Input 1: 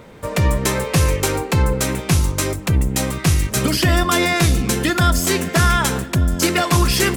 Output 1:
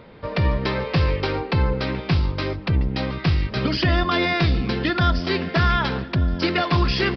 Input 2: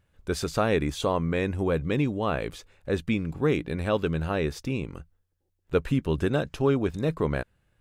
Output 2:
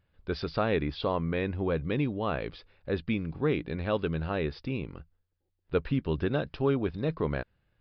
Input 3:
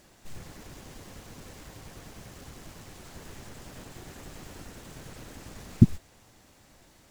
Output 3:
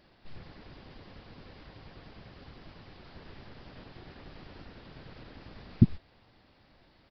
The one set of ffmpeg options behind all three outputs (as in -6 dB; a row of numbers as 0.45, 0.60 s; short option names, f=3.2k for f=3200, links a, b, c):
-af "aresample=11025,aresample=44100,volume=-3.5dB"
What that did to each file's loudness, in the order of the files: -4.0, -3.5, -3.5 LU